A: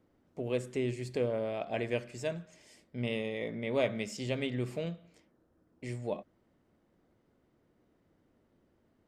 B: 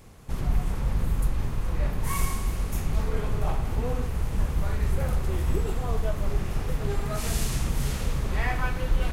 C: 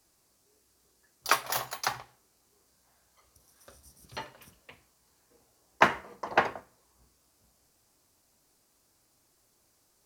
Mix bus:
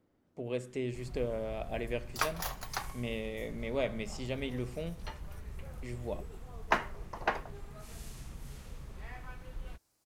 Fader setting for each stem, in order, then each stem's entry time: −3.0, −19.0, −7.0 decibels; 0.00, 0.65, 0.90 seconds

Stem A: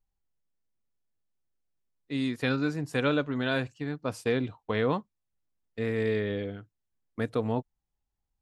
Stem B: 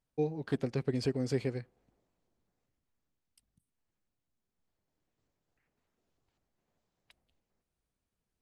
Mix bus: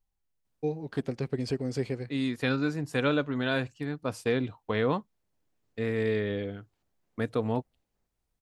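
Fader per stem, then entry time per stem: 0.0, +1.0 decibels; 0.00, 0.45 seconds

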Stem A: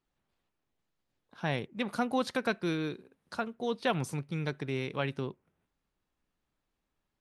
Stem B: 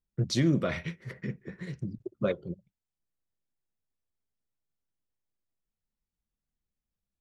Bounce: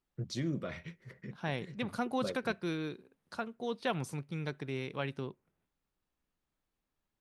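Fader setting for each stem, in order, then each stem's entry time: −4.0, −10.0 decibels; 0.00, 0.00 seconds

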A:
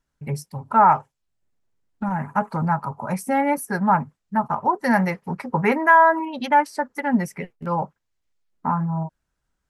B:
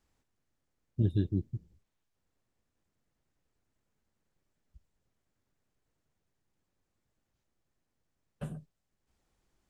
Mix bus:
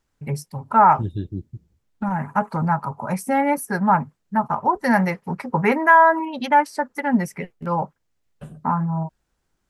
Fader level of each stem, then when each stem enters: +1.0, +1.0 decibels; 0.00, 0.00 seconds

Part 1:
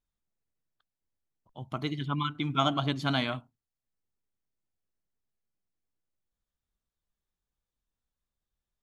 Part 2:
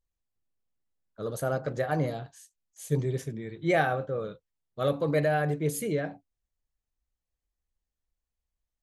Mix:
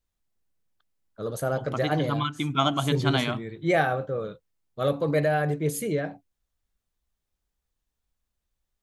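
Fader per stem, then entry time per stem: +3.0, +2.0 decibels; 0.00, 0.00 seconds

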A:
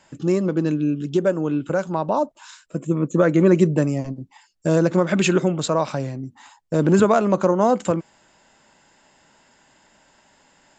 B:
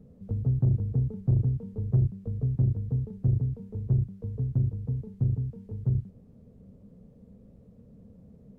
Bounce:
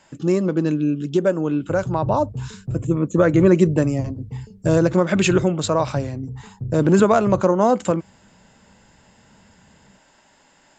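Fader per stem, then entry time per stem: +1.0, −3.5 decibels; 0.00, 1.40 seconds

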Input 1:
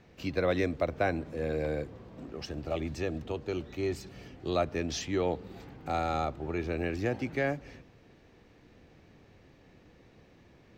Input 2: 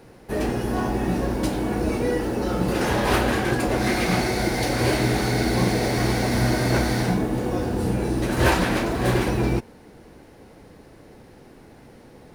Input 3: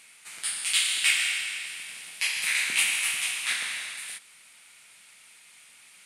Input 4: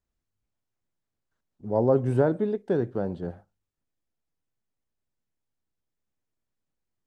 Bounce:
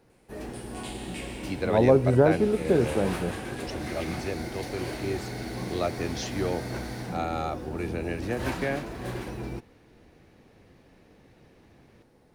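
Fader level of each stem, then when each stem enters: 0.0, −13.5, −19.5, +2.5 decibels; 1.25, 0.00, 0.10, 0.00 seconds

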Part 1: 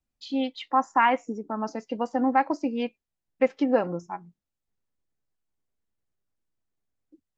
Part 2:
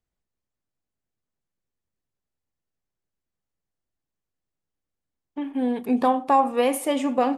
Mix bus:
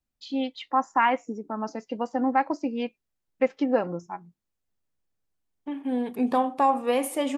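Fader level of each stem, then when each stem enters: −1.0, −3.0 decibels; 0.00, 0.30 seconds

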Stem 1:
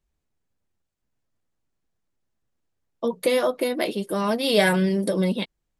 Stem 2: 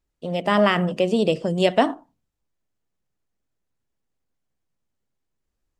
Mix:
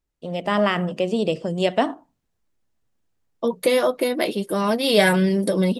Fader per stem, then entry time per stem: +2.5, −2.0 decibels; 0.40, 0.00 seconds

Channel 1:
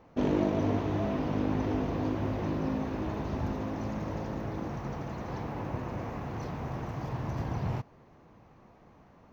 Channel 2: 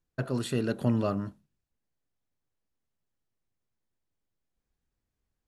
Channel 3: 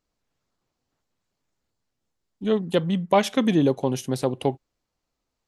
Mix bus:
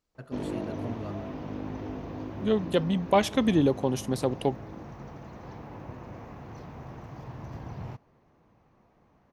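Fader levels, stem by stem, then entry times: −6.5, −12.5, −3.0 decibels; 0.15, 0.00, 0.00 seconds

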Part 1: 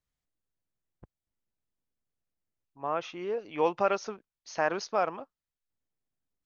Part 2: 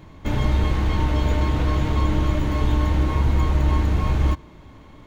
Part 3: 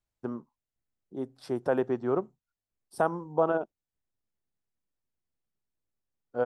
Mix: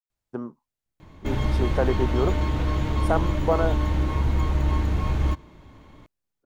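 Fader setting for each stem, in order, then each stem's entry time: muted, −3.5 dB, +2.5 dB; muted, 1.00 s, 0.10 s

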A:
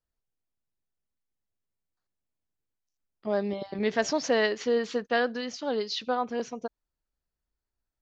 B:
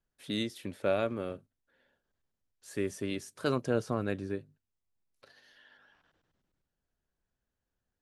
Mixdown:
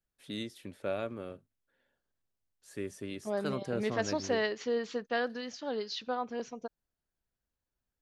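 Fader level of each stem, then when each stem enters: −6.0, −5.5 decibels; 0.00, 0.00 seconds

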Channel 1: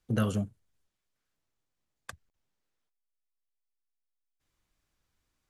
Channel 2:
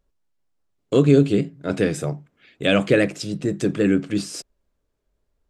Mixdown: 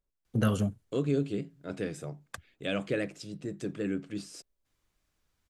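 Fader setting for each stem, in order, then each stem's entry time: +1.5, −14.0 decibels; 0.25, 0.00 seconds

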